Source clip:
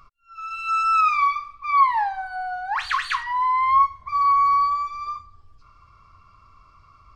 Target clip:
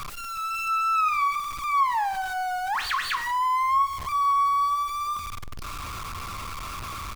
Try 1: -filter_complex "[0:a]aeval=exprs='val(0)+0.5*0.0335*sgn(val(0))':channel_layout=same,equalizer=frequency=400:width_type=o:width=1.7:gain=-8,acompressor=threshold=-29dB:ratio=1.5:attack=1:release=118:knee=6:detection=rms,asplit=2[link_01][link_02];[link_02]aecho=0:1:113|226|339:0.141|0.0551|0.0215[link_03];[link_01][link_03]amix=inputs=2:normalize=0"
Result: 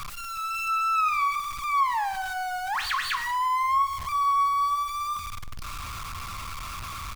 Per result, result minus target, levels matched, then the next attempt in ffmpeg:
echo-to-direct +6 dB; 500 Hz band −2.5 dB
-filter_complex "[0:a]aeval=exprs='val(0)+0.5*0.0335*sgn(val(0))':channel_layout=same,equalizer=frequency=400:width_type=o:width=1.7:gain=-8,acompressor=threshold=-29dB:ratio=1.5:attack=1:release=118:knee=6:detection=rms,asplit=2[link_01][link_02];[link_02]aecho=0:1:113|226|339:0.0708|0.0276|0.0108[link_03];[link_01][link_03]amix=inputs=2:normalize=0"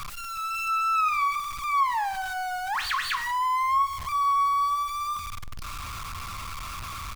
500 Hz band −2.5 dB
-filter_complex "[0:a]aeval=exprs='val(0)+0.5*0.0335*sgn(val(0))':channel_layout=same,acompressor=threshold=-29dB:ratio=1.5:attack=1:release=118:knee=6:detection=rms,asplit=2[link_01][link_02];[link_02]aecho=0:1:113|226|339:0.0708|0.0276|0.0108[link_03];[link_01][link_03]amix=inputs=2:normalize=0"

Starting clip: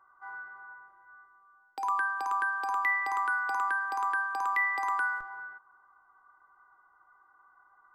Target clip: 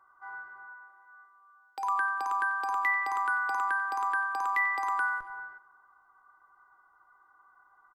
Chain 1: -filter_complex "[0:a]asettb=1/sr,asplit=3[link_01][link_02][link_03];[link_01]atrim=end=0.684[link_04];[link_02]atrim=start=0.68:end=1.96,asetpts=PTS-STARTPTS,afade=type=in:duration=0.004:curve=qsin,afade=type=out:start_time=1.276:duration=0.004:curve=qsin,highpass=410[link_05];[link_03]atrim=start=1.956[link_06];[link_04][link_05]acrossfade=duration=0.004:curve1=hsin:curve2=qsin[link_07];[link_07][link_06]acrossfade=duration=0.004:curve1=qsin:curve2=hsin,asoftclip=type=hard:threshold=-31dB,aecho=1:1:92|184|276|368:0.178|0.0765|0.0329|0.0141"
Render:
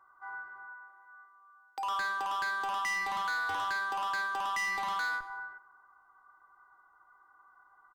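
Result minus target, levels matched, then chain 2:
hard clipping: distortion +37 dB
-filter_complex "[0:a]asettb=1/sr,asplit=3[link_01][link_02][link_03];[link_01]atrim=end=0.684[link_04];[link_02]atrim=start=0.68:end=1.96,asetpts=PTS-STARTPTS,afade=type=in:duration=0.004:curve=qsin,afade=type=out:start_time=1.276:duration=0.004:curve=qsin,highpass=410[link_05];[link_03]atrim=start=1.956[link_06];[link_04][link_05]acrossfade=duration=0.004:curve1=hsin:curve2=qsin[link_07];[link_07][link_06]acrossfade=duration=0.004:curve1=qsin:curve2=hsin,asoftclip=type=hard:threshold=-20dB,aecho=1:1:92|184|276|368:0.178|0.0765|0.0329|0.0141"

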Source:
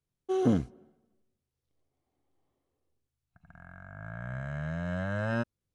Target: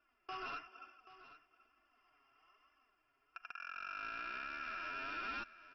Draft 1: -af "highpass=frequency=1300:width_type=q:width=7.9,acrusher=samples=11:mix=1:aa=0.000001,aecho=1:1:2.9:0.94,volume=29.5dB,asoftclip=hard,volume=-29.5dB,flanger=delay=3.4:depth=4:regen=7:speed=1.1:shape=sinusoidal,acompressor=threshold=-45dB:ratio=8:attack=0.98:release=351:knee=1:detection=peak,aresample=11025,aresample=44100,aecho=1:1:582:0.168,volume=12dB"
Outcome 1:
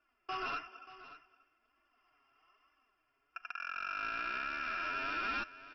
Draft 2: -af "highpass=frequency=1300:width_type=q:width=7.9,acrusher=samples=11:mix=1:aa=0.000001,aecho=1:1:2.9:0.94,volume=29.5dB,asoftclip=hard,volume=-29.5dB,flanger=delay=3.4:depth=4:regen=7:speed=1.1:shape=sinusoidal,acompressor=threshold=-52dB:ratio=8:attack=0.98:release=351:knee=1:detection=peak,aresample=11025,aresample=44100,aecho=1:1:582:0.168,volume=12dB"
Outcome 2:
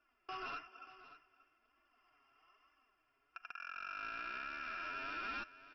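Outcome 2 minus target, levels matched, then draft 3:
echo 200 ms early
-af "highpass=frequency=1300:width_type=q:width=7.9,acrusher=samples=11:mix=1:aa=0.000001,aecho=1:1:2.9:0.94,volume=29.5dB,asoftclip=hard,volume=-29.5dB,flanger=delay=3.4:depth=4:regen=7:speed=1.1:shape=sinusoidal,acompressor=threshold=-52dB:ratio=8:attack=0.98:release=351:knee=1:detection=peak,aresample=11025,aresample=44100,aecho=1:1:782:0.168,volume=12dB"

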